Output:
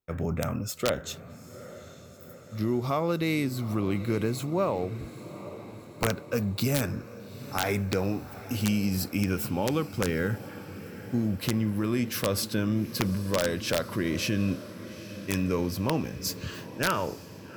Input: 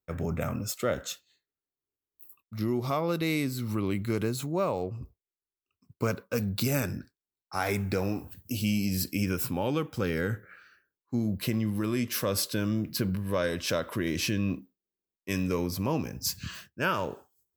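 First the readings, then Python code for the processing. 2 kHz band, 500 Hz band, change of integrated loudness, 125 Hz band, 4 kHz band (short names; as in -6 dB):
+1.0 dB, +1.5 dB, +1.5 dB, +1.5 dB, +1.0 dB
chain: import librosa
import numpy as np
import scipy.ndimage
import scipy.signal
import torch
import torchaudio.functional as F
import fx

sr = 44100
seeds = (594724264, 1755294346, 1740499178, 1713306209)

y = fx.high_shelf(x, sr, hz=3800.0, db=-4.0)
y = fx.echo_diffused(y, sr, ms=835, feedback_pct=64, wet_db=-15)
y = (np.mod(10.0 ** (16.5 / 20.0) * y + 1.0, 2.0) - 1.0) / 10.0 ** (16.5 / 20.0)
y = y * 10.0 ** (1.5 / 20.0)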